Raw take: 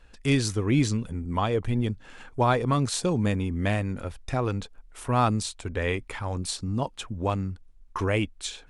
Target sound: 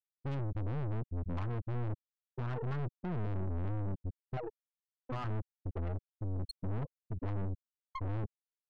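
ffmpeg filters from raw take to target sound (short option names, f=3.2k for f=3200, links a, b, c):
-filter_complex "[0:a]asettb=1/sr,asplit=3[a][b][c];[a]atrim=end=4.364[d];[b]atrim=start=4.36:end=5.24,asetpts=PTS-STARTPTS,afade=t=in:d=0.004:c=qsin,afade=t=out:st=0.876:d=0.004:c=qsin,aemphasis=mode=production:type=bsi[e];[c]atrim=start=5.236[f];[d][e]acrossfade=d=0.004:c1=hsin:c2=qsin[g];[g][f]acrossfade=d=0.004:c1=qsin:c2=hsin,afftfilt=real='re*gte(hypot(re,im),0.0316)':imag='im*gte(hypot(re,im),0.0316)':win_size=1024:overlap=0.75,highpass=f=62:w=0.5412,highpass=f=62:w=1.3066,afftfilt=real='re*gte(hypot(re,im),0.224)':imag='im*gte(hypot(re,im),0.224)':win_size=1024:overlap=0.75,adynamicequalizer=threshold=0.01:dfrequency=320:dqfactor=1.3:tfrequency=320:tqfactor=1.3:attack=5:release=100:ratio=0.375:range=3:mode=cutabove:tftype=bell,alimiter=limit=-22dB:level=0:latency=1:release=31,acrossover=split=200|3000[h][i][j];[i]acompressor=threshold=-49dB:ratio=2.5[k];[h][k][j]amix=inputs=3:normalize=0,aeval=exprs='(tanh(178*val(0)+0.65)-tanh(0.65))/178':c=same,volume=10dB"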